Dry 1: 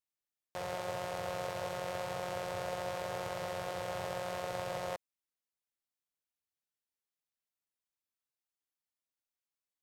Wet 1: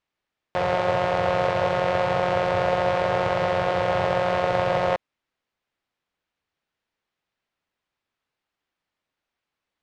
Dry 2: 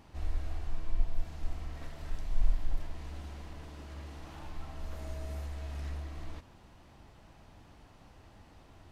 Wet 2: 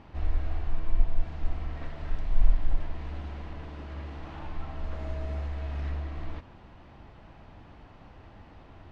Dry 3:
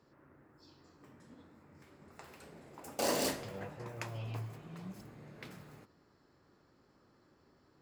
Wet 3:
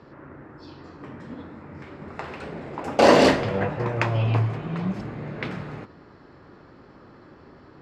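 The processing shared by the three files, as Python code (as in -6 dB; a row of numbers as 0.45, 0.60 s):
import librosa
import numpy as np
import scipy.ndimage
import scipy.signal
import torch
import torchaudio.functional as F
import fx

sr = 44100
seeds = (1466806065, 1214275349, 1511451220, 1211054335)

y = scipy.signal.sosfilt(scipy.signal.butter(2, 3000.0, 'lowpass', fs=sr, output='sos'), x)
y = y * 10.0 ** (-26 / 20.0) / np.sqrt(np.mean(np.square(y)))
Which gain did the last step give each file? +16.5, +6.0, +19.0 dB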